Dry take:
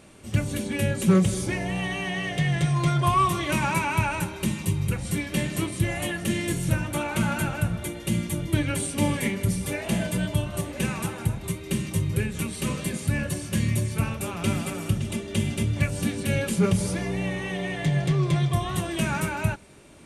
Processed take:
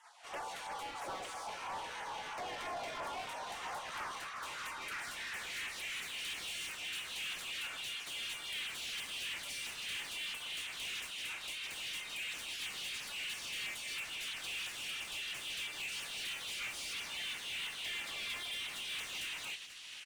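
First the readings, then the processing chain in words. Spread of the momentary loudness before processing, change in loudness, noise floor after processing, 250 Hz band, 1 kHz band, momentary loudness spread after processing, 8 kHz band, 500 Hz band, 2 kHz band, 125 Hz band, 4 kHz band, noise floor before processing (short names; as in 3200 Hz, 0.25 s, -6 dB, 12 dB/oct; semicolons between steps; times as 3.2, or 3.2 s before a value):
6 LU, -13.5 dB, -47 dBFS, -34.5 dB, -13.5 dB, 4 LU, -11.0 dB, -21.0 dB, -8.5 dB, under -40 dB, -2.0 dB, -38 dBFS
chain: spectral gate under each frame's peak -20 dB weak; high shelf 4600 Hz +9.5 dB; compressor, threshold -32 dBFS, peak gain reduction 8.5 dB; band-pass sweep 830 Hz -> 2800 Hz, 3.63–6.27; overdrive pedal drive 31 dB, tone 5100 Hz, clips at -26.5 dBFS; LFO notch saw down 3 Hz 510–4600 Hz; echo 0.486 s -14 dB; gain -6 dB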